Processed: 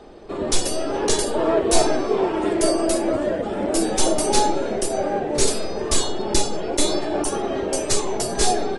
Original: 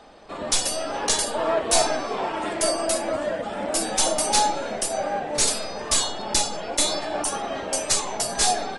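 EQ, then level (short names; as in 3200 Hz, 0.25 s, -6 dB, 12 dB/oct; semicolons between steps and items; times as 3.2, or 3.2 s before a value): low shelf 220 Hz +12 dB; bell 380 Hz +13.5 dB 0.59 oct; -1.5 dB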